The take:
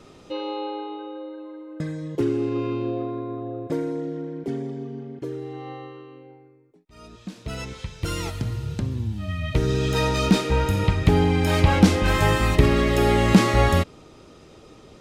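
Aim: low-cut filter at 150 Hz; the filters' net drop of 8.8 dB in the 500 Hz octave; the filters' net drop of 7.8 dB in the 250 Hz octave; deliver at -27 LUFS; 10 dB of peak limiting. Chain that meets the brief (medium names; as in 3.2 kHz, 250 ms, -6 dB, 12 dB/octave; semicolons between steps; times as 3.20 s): high-pass 150 Hz; peaking EQ 250 Hz -7.5 dB; peaking EQ 500 Hz -8.5 dB; trim +4.5 dB; peak limiter -14.5 dBFS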